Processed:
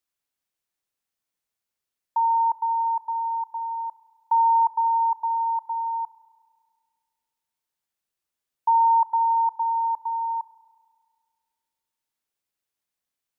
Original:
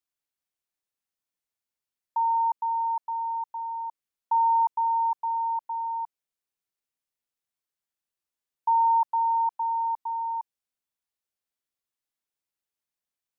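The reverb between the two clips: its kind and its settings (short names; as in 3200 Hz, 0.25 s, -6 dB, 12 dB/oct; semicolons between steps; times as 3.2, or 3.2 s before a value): spring tank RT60 1.9 s, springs 33 ms, chirp 80 ms, DRR 14 dB; gain +3.5 dB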